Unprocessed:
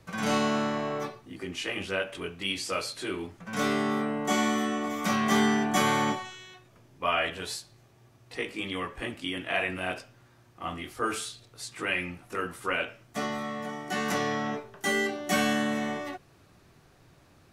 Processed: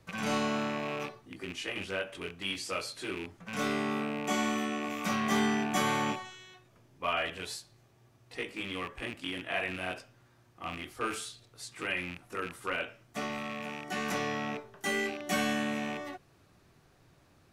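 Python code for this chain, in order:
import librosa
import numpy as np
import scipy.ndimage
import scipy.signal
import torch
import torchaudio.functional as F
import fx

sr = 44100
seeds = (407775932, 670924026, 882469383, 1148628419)

y = fx.rattle_buzz(x, sr, strikes_db=-41.0, level_db=-25.0)
y = y * librosa.db_to_amplitude(-4.5)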